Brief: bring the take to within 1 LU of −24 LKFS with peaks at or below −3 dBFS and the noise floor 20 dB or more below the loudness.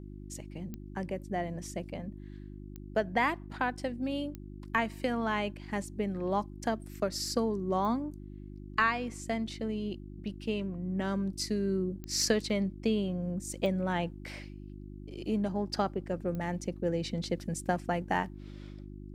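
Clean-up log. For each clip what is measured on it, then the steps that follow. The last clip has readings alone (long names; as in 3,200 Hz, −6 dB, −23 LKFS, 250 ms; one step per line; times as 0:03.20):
number of clicks 7; mains hum 50 Hz; hum harmonics up to 350 Hz; level of the hum −43 dBFS; integrated loudness −33.0 LKFS; sample peak −14.5 dBFS; target loudness −24.0 LKFS
→ click removal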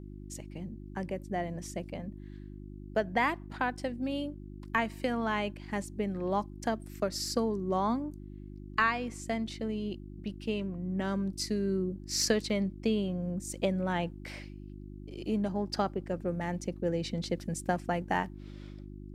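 number of clicks 0; mains hum 50 Hz; hum harmonics up to 350 Hz; level of the hum −43 dBFS
→ hum removal 50 Hz, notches 7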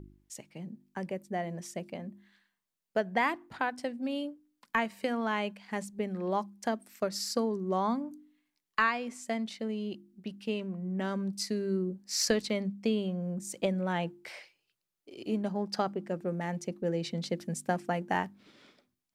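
mains hum none found; integrated loudness −33.5 LKFS; sample peak −15.0 dBFS; target loudness −24.0 LKFS
→ level +9.5 dB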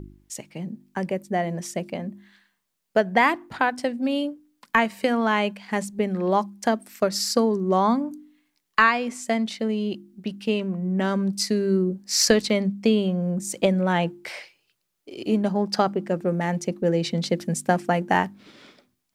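integrated loudness −24.0 LKFS; sample peak −5.5 dBFS; background noise floor −76 dBFS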